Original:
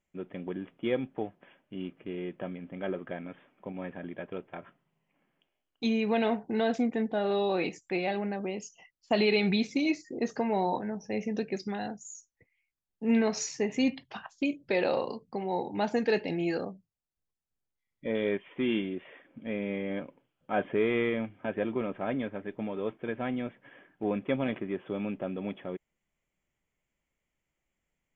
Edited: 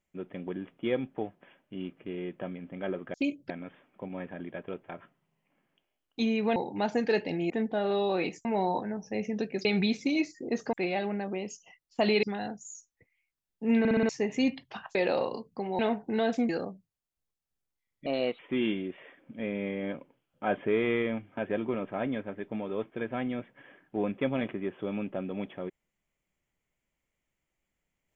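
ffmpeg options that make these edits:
-filter_complex "[0:a]asplit=19[a][b][c][d][e][f][g][h][i][j][k][l][m][n][o][p][q][r][s];[a]atrim=end=3.142[t];[b]atrim=start=14.348:end=14.712[u];[c]atrim=start=3.138:end=6.202[v];[d]atrim=start=15.548:end=16.492[w];[e]atrim=start=6.898:end=7.852[x];[f]atrim=start=10.428:end=11.632[y];[g]atrim=start=9.348:end=10.432[z];[h]atrim=start=7.848:end=9.352[aa];[i]atrim=start=11.628:end=13.252[ab];[j]atrim=start=13.188:end=13.252[ac];[k]atrim=start=13.188:end=13.252[ad];[l]atrim=start=13.188:end=13.252[ae];[m]atrim=start=13.188:end=13.252[af];[n]atrim=start=13.488:end=14.352[ag];[o]atrim=start=14.708:end=15.552[ah];[p]atrim=start=6.198:end=6.902[ai];[q]atrim=start=16.488:end=18.064[aj];[r]atrim=start=18.06:end=18.46,asetpts=PTS-STARTPTS,asetrate=53802,aresample=44100,atrim=end_sample=14459,asetpts=PTS-STARTPTS[ak];[s]atrim=start=18.456[al];[t][u]acrossfade=d=0.004:c1=hsin:c2=hsin[am];[am][v]acrossfade=d=0.004:c1=hsin:c2=hsin[an];[an][w]acrossfade=d=0.004:c1=hsin:c2=hsin[ao];[ao][x]acrossfade=d=0.004:c1=hsin:c2=hsin[ap];[ap][y]acrossfade=d=0.004:c1=hsin:c2=hsin[aq];[aq][z]acrossfade=d=0.004:c1=hsin:c2=hsin[ar];[ar][aa]acrossfade=d=0.004:c1=hsin:c2=hsin[as];[as][ab]acrossfade=d=0.004:c1=hsin:c2=hsin[at];[at][ac]acrossfade=d=0.004:c1=hsin:c2=hsin[au];[au][ad]acrossfade=d=0.004:c1=hsin:c2=hsin[av];[av][ae]acrossfade=d=0.004:c1=hsin:c2=hsin[aw];[aw][af]acrossfade=d=0.004:c1=hsin:c2=hsin[ax];[ax][ag]acrossfade=d=0.004:c1=hsin:c2=hsin[ay];[ay][ah]acrossfade=d=0.004:c1=hsin:c2=hsin[az];[az][ai]acrossfade=d=0.004:c1=hsin:c2=hsin[ba];[ba][aj]acrossfade=d=0.004:c1=hsin:c2=hsin[bb];[bb][ak]acrossfade=d=0.004:c1=hsin:c2=hsin[bc];[bc][al]acrossfade=d=0.004:c1=hsin:c2=hsin"

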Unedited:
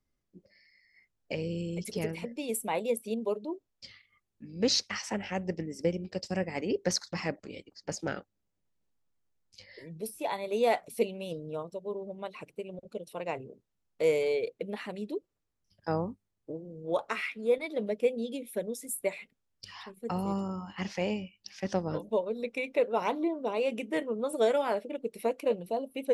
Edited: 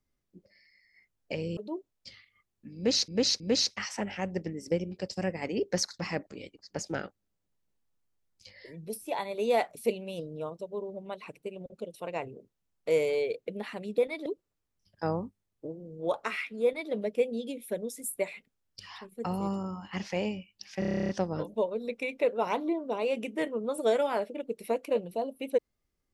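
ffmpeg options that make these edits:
-filter_complex "[0:a]asplit=16[a][b][c][d][e][f][g][h][i][j][k][l][m][n][o][p];[a]atrim=end=1.572[q];[b]atrim=start=3.338:end=4.852[r];[c]atrim=start=4.528:end=4.852[s];[d]atrim=start=4.528:end=15.112[t];[e]atrim=start=17.488:end=17.772[u];[f]atrim=start=15.108:end=21.672[v];[g]atrim=start=21.638:end=21.672[w];[h]atrim=start=21.638:end=21.672[x];[i]atrim=start=21.638:end=21.672[y];[j]atrim=start=21.638:end=21.672[z];[k]atrim=start=21.638:end=21.672[aa];[l]atrim=start=21.638:end=21.672[ab];[m]atrim=start=21.638:end=21.672[ac];[n]atrim=start=21.638:end=21.672[ad];[o]atrim=start=21.638:end=21.672[ae];[p]atrim=start=21.638[af];[q][r]acrossfade=d=0.004:c1=hsin:c2=hsin[ag];[ag][s]acrossfade=d=0.004:c1=hsin:c2=hsin[ah];[ah][t]acrossfade=d=0.004:c1=hsin:c2=hsin[ai];[ai][u]acrossfade=d=0.004:c1=hsin:c2=hsin[aj];[aj][v]acrossfade=d=0.004:c1=hsin:c2=hsin[ak];[ak][w]acrossfade=d=0.004:c1=hsin:c2=hsin[al];[al][x]acrossfade=d=0.004:c1=hsin:c2=hsin[am];[am][y]acrossfade=d=0.004:c1=hsin:c2=hsin[an];[an][z]acrossfade=d=0.004:c1=hsin:c2=hsin[ao];[ao][aa]acrossfade=d=0.004:c1=hsin:c2=hsin[ap];[ap][ab]acrossfade=d=0.004:c1=hsin:c2=hsin[aq];[aq][ac]acrossfade=d=0.004:c1=hsin:c2=hsin[ar];[ar][ad]acrossfade=d=0.004:c1=hsin:c2=hsin[as];[as][ae]acrossfade=d=0.004:c1=hsin:c2=hsin[at];[at][af]acrossfade=d=0.004:c1=hsin:c2=hsin"

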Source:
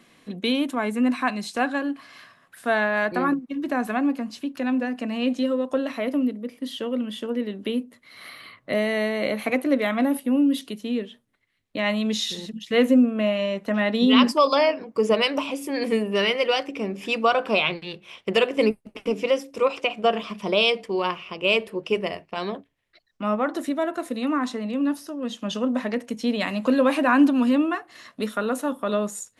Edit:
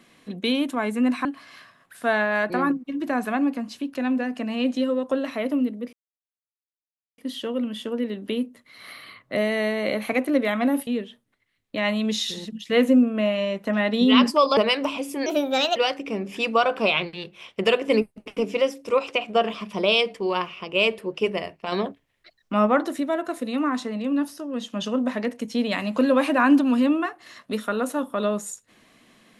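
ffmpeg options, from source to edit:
-filter_complex "[0:a]asplit=9[a][b][c][d][e][f][g][h][i];[a]atrim=end=1.252[j];[b]atrim=start=1.868:end=6.55,asetpts=PTS-STARTPTS,afade=t=out:st=4.678:d=0.004:c=hsin,apad=pad_dur=1.25[k];[c]atrim=start=6.55:end=10.242,asetpts=PTS-STARTPTS,afade=t=in:d=0.004:c=hsin[l];[d]atrim=start=10.878:end=14.582[m];[e]atrim=start=15.098:end=15.794[n];[f]atrim=start=15.79:end=16.45,asetpts=PTS-STARTPTS,asetrate=58212,aresample=44100[o];[g]atrim=start=16.446:end=22.412[p];[h]atrim=start=22.408:end=23.552,asetpts=PTS-STARTPTS,volume=4.5dB[q];[i]atrim=start=23.548[r];[k][l]concat=n=2:v=0:a=1[s];[j][s]acrossfade=d=0.004:c1=hsin:c2=hsin[t];[t][m]acrossfade=d=0.004:c1=hsin:c2=hsin[u];[u][n]acrossfade=d=0.004:c1=hsin:c2=hsin[v];[v][o]acrossfade=d=0.004:c1=hsin:c2=hsin[w];[w][p]acrossfade=d=0.004:c1=hsin:c2=hsin[x];[x][q]acrossfade=d=0.004:c1=hsin:c2=hsin[y];[y][r]acrossfade=d=0.004:c1=hsin:c2=hsin"

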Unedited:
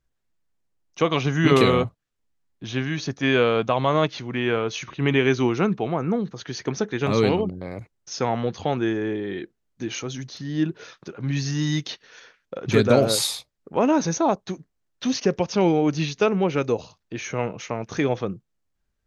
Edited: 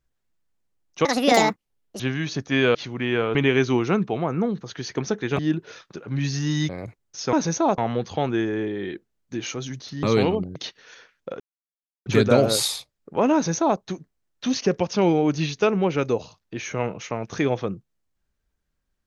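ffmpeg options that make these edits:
-filter_complex "[0:a]asplit=12[a][b][c][d][e][f][g][h][i][j][k][l];[a]atrim=end=1.054[m];[b]atrim=start=1.05:end=2.71,asetpts=PTS-STARTPTS,asetrate=77175,aresample=44100[n];[c]atrim=start=2.706:end=3.462[o];[d]atrim=start=4.088:end=4.692[p];[e]atrim=start=5.048:end=7.092[q];[f]atrim=start=10.508:end=11.812[r];[g]atrim=start=7.618:end=8.262[s];[h]atrim=start=13.928:end=14.382[t];[i]atrim=start=8.258:end=10.512[u];[j]atrim=start=7.088:end=7.622[v];[k]atrim=start=11.808:end=12.65,asetpts=PTS-STARTPTS,afade=t=out:st=0.838:d=0.004:c=hsin,apad=pad_dur=0.66[w];[l]atrim=start=12.65,asetpts=PTS-STARTPTS,afade=t=in:d=0.004:c=hsin[x];[m][n]acrossfade=d=0.004:c1=hsin:c2=hsin[y];[y][o]acrossfade=d=0.004:c1=hsin:c2=hsin[z];[z][p]acrossfade=d=0.004:c1=hsin:c2=hsin[aa];[aa][q]acrossfade=d=0.004:c1=hsin:c2=hsin[ab];[ab][r]acrossfade=d=0.004:c1=hsin:c2=hsin[ac];[ac][s]acrossfade=d=0.004:c1=hsin:c2=hsin[ad];[ad][t]acrossfade=d=0.004:c1=hsin:c2=hsin[ae];[ae][u]acrossfade=d=0.004:c1=hsin:c2=hsin[af];[af][v]acrossfade=d=0.004:c1=hsin:c2=hsin[ag];[w][x]concat=n=2:v=0:a=1[ah];[ag][ah]acrossfade=d=0.004:c1=hsin:c2=hsin"

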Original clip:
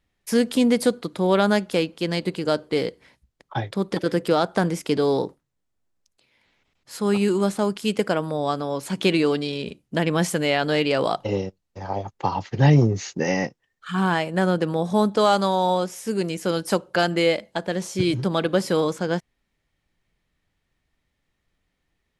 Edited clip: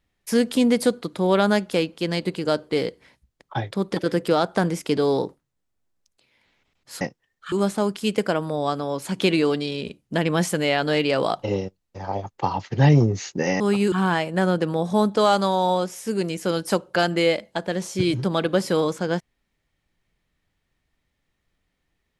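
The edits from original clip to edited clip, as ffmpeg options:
-filter_complex "[0:a]asplit=5[a][b][c][d][e];[a]atrim=end=7.012[f];[b]atrim=start=13.408:end=13.922[g];[c]atrim=start=7.328:end=13.412[h];[d]atrim=start=7.008:end=7.332[i];[e]atrim=start=13.918[j];[f][g]acrossfade=d=0.004:c1=hsin:c2=hsin[k];[k][h]acrossfade=d=0.004:c1=hsin:c2=hsin[l];[l][i]acrossfade=d=0.004:c1=hsin:c2=hsin[m];[m][j]acrossfade=d=0.004:c1=hsin:c2=hsin"

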